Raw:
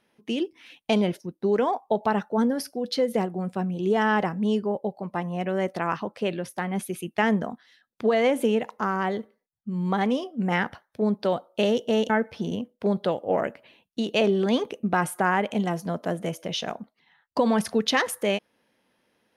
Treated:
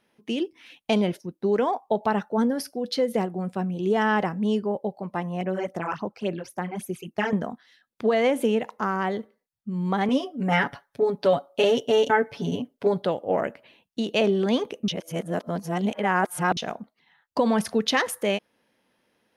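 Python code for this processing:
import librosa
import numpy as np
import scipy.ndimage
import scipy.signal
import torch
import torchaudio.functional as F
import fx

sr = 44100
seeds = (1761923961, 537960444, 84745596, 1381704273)

y = fx.phaser_stages(x, sr, stages=12, low_hz=180.0, high_hz=4200.0, hz=3.6, feedback_pct=25, at=(5.41, 7.33))
y = fx.comb(y, sr, ms=7.1, depth=0.95, at=(10.08, 13.02))
y = fx.edit(y, sr, fx.reverse_span(start_s=14.88, length_s=1.69), tone=tone)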